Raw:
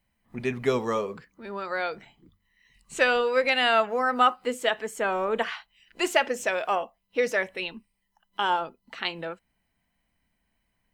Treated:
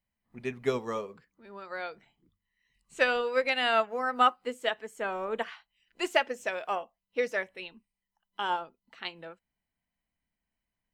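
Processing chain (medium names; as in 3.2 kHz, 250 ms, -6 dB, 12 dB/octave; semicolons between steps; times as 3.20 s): upward expansion 1.5:1, over -37 dBFS; trim -2 dB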